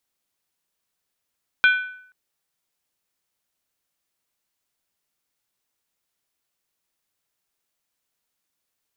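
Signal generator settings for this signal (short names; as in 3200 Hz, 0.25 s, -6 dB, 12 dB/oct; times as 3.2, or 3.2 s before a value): skin hit length 0.48 s, lowest mode 1500 Hz, decay 0.64 s, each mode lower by 6.5 dB, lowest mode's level -10.5 dB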